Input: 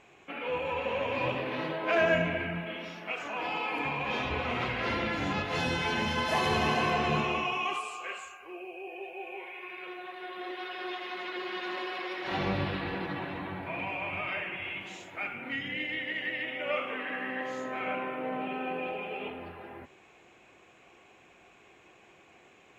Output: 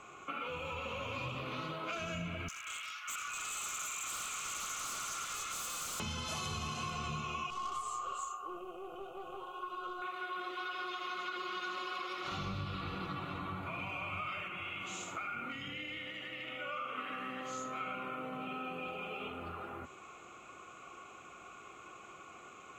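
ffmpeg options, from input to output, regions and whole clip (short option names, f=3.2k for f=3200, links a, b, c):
-filter_complex "[0:a]asettb=1/sr,asplit=3[a][b][c];[a]atrim=end=2.484[d];[b]atrim=start=2.48:end=6,asetpts=PTS-STARTPTS,afade=t=in:d=0.004:c=qsin,afade=t=out:st=3.516:d=0.004:c=qsin,highpass=f=1.5k:w=0.5412,highpass=f=1.5k:w=1.3066,aeval=exprs='0.0112*(abs(mod(val(0)/0.0112+3,4)-2)-1)':c=same[e];[c]atrim=start=5.996[f];[d][e]acrossfade=d=0.004:c1=hsin:c2=qsin[g];[g][f]acrossfade=d=0.004:c1=qsin:c2=hsin,asettb=1/sr,asplit=3[h][i][j];[h]atrim=end=7.504[k];[i]atrim=start=7.5:end=10.02,asetpts=PTS-STARTPTS,afade=t=in:d=0.004:c=qsin,afade=t=out:st=2.516:d=0.004:c=qsin,asuperstop=centerf=2000:order=8:qfactor=1.3,aeval=exprs='(tanh(56.2*val(0)+0.5)-tanh(0.5))/56.2':c=same[l];[j]atrim=start=10.016[m];[k][l]acrossfade=d=0.004:c1=hsin:c2=qsin[n];[n][m]acrossfade=d=0.004:c1=qsin:c2=hsin,asettb=1/sr,asplit=3[o][p][q];[o]atrim=end=14.474[r];[p]atrim=start=14.47:end=16.98,asetpts=PTS-STARTPTS,afade=t=in:d=0.004:c=qsin,afade=t=out:st=2.506:d=0.004:c=qsin,acompressor=threshold=-40dB:ratio=2:attack=3.2:release=140:knee=1:detection=peak,aecho=1:1:76:0.473,atrim=end_sample=110691[s];[q]atrim=start=16.976[t];[r][s]acrossfade=d=0.004:c1=hsin:c2=qsin[u];[u][t]acrossfade=d=0.004:c1=qsin:c2=hsin,acrossover=split=170|3000[v][w][x];[w]acompressor=threshold=-47dB:ratio=3[y];[v][y][x]amix=inputs=3:normalize=0,superequalizer=10b=3.98:11b=0.501:15b=2.24,acompressor=threshold=-38dB:ratio=6,volume=2dB"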